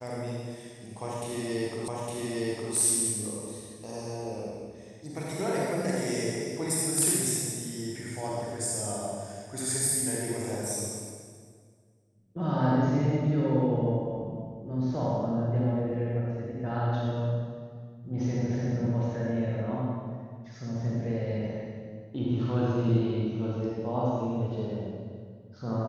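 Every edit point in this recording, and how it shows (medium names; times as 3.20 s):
1.88 s: repeat of the last 0.86 s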